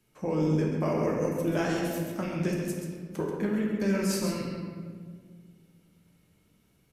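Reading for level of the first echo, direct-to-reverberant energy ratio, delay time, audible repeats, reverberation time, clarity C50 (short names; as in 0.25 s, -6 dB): -7.0 dB, -2.5 dB, 0.135 s, 1, 1.8 s, 0.5 dB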